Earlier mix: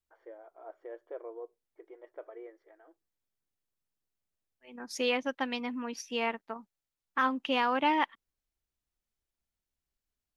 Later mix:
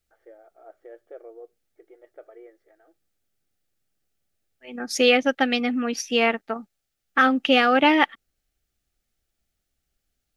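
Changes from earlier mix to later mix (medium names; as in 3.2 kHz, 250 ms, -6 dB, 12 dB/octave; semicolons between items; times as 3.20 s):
second voice +12.0 dB; master: add Butterworth band-stop 1 kHz, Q 3.6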